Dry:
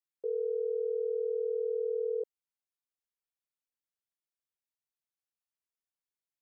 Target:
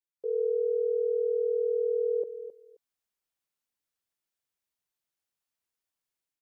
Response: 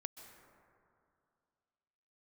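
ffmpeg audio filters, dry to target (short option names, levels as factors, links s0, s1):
-filter_complex "[0:a]dynaudnorm=f=100:g=5:m=4.22,asplit=2[s0][s1];[s1]aecho=0:1:265|530:0.251|0.0402[s2];[s0][s2]amix=inputs=2:normalize=0,volume=0.422"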